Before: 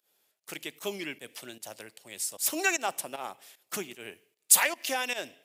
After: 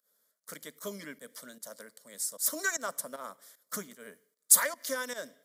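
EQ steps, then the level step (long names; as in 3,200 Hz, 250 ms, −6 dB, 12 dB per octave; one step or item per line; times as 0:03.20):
phaser with its sweep stopped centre 530 Hz, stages 8
0.0 dB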